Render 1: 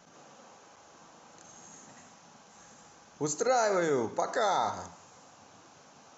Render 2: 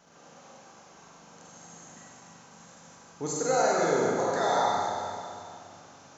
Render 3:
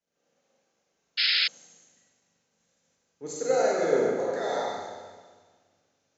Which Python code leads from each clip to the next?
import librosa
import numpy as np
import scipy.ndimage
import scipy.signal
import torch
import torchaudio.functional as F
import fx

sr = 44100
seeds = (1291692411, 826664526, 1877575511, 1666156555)

y1 = fx.rev_schroeder(x, sr, rt60_s=2.4, comb_ms=32, drr_db=-4.0)
y1 = y1 * librosa.db_to_amplitude(-2.5)
y2 = fx.spec_paint(y1, sr, seeds[0], shape='noise', start_s=1.17, length_s=0.31, low_hz=1300.0, high_hz=5300.0, level_db=-24.0)
y2 = fx.graphic_eq(y2, sr, hz=(125, 250, 500, 1000, 2000, 4000), db=(-3, 3, 9, -6, 6, 3))
y2 = fx.band_widen(y2, sr, depth_pct=70)
y2 = y2 * librosa.db_to_amplitude(-8.0)